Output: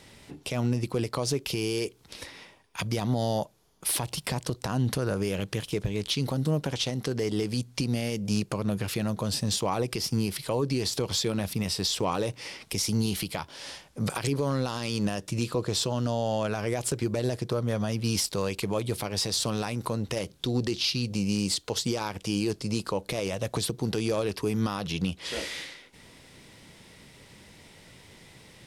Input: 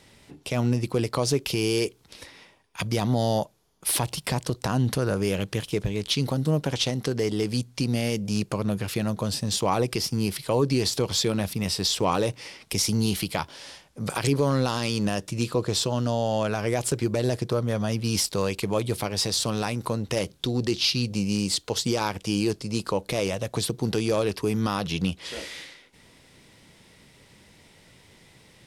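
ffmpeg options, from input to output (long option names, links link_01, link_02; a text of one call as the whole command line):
ffmpeg -i in.wav -af "alimiter=limit=-19.5dB:level=0:latency=1:release=271,volume=2.5dB" out.wav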